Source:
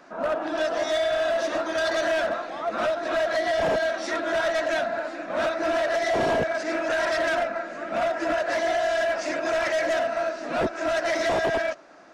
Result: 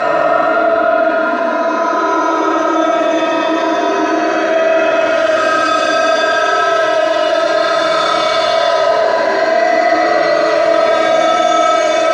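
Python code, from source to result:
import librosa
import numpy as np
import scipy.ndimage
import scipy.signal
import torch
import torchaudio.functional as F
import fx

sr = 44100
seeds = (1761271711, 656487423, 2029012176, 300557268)

y = fx.rattle_buzz(x, sr, strikes_db=-42.0, level_db=-34.0)
y = scipy.signal.sosfilt(scipy.signal.butter(2, 230.0, 'highpass', fs=sr, output='sos'), y)
y = fx.low_shelf(y, sr, hz=430.0, db=3.5)
y = y + 0.79 * np.pad(y, (int(7.1 * sr / 1000.0), 0))[:len(y)]
y = fx.paulstretch(y, sr, seeds[0], factor=30.0, window_s=0.05, from_s=1.6)
y = fx.fold_sine(y, sr, drive_db=4, ceiling_db=-9.0)
y = fx.air_absorb(y, sr, metres=58.0)
y = y + 10.0 ** (-6.0 / 20.0) * np.pad(y, (int(140 * sr / 1000.0), 0))[:len(y)]
y = fx.rev_fdn(y, sr, rt60_s=0.76, lf_ratio=1.0, hf_ratio=0.5, size_ms=14.0, drr_db=-9.5)
y = fx.env_flatten(y, sr, amount_pct=50)
y = y * librosa.db_to_amplitude(-9.5)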